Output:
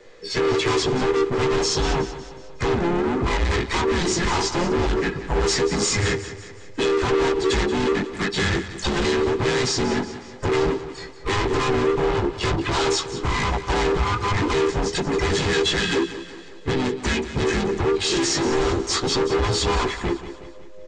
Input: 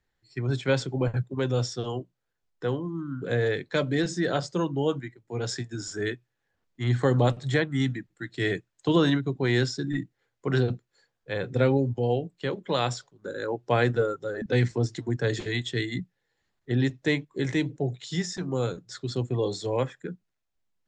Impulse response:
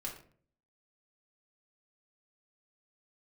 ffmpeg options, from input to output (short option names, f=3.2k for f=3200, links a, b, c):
-filter_complex "[0:a]afftfilt=real='real(if(between(b,1,1008),(2*floor((b-1)/24)+1)*24-b,b),0)':imag='imag(if(between(b,1,1008),(2*floor((b-1)/24)+1)*24-b,b),0)*if(between(b,1,1008),-1,1)':win_size=2048:overlap=0.75,acompressor=threshold=-42dB:ratio=3,apsyclip=34.5dB,flanger=delay=16.5:depth=4.7:speed=0.3,aresample=16000,volume=17.5dB,asoftclip=hard,volume=-17.5dB,aresample=44100,aecho=1:1:2.4:0.31,asplit=2[a][b];[b]aecho=0:1:183|366|549|732|915:0.224|0.112|0.056|0.028|0.014[c];[a][c]amix=inputs=2:normalize=0,asplit=3[d][e][f];[e]asetrate=35002,aresample=44100,atempo=1.25992,volume=-11dB[g];[f]asetrate=52444,aresample=44100,atempo=0.840896,volume=-8dB[h];[d][g][h]amix=inputs=3:normalize=0,volume=-4dB"